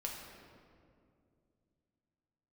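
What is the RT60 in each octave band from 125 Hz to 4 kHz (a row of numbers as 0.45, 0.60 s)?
3.5, 3.3, 2.7, 2.0, 1.6, 1.3 s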